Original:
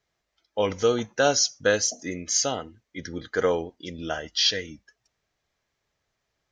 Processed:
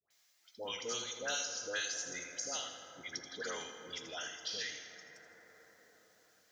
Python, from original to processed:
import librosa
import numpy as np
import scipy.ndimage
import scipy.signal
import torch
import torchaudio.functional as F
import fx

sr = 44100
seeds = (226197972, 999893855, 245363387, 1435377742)

p1 = fx.octave_divider(x, sr, octaves=1, level_db=-3.0)
p2 = scipy.signal.sosfilt(scipy.signal.butter(2, 76.0, 'highpass', fs=sr, output='sos'), p1)
p3 = scipy.signal.lfilter([1.0, -0.97], [1.0], p2)
p4 = fx.over_compress(p3, sr, threshold_db=-35.0, ratio=-1.0)
p5 = fx.dispersion(p4, sr, late='highs', ms=107.0, hz=1000.0)
p6 = p5 + fx.echo_feedback(p5, sr, ms=81, feedback_pct=50, wet_db=-10.5, dry=0)
p7 = fx.rev_plate(p6, sr, seeds[0], rt60_s=4.3, hf_ratio=0.3, predelay_ms=0, drr_db=10.0)
p8 = fx.band_squash(p7, sr, depth_pct=40)
y = F.gain(torch.from_numpy(p8), -3.0).numpy()